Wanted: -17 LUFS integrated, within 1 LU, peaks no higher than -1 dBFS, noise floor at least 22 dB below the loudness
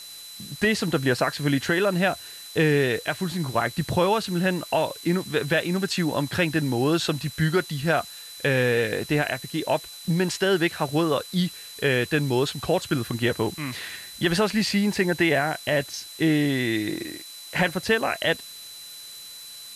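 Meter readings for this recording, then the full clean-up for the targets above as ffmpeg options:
steady tone 4 kHz; tone level -41 dBFS; noise floor -41 dBFS; noise floor target -47 dBFS; loudness -24.5 LUFS; peak level -11.0 dBFS; loudness target -17.0 LUFS
-> -af "bandreject=f=4000:w=30"
-af "afftdn=nr=6:nf=-41"
-af "volume=2.37"

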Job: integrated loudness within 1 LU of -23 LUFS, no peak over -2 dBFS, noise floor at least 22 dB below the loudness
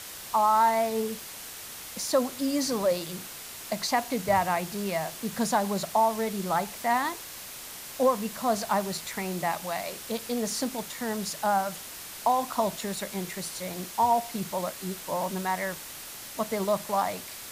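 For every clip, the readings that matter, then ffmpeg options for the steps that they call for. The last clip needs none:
noise floor -42 dBFS; noise floor target -51 dBFS; loudness -29.0 LUFS; peak level -13.0 dBFS; loudness target -23.0 LUFS
-> -af "afftdn=nr=9:nf=-42"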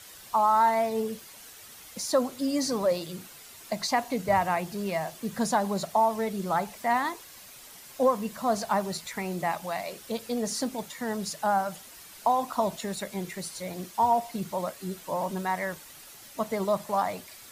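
noise floor -48 dBFS; noise floor target -51 dBFS
-> -af "afftdn=nr=6:nf=-48"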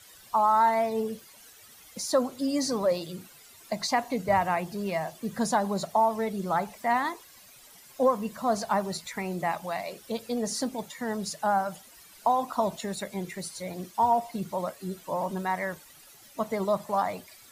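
noise floor -53 dBFS; loudness -29.0 LUFS; peak level -13.0 dBFS; loudness target -23.0 LUFS
-> -af "volume=2"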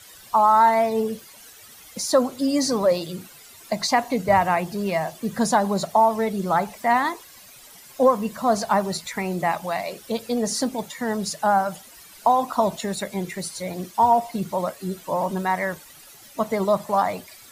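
loudness -23.0 LUFS; peak level -7.0 dBFS; noise floor -47 dBFS

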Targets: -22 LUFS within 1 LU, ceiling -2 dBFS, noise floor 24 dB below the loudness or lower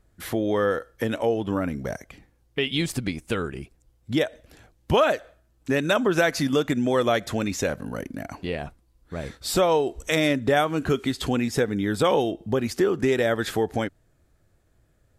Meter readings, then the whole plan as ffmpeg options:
loudness -25.0 LUFS; peak level -7.5 dBFS; loudness target -22.0 LUFS
-> -af "volume=1.41"

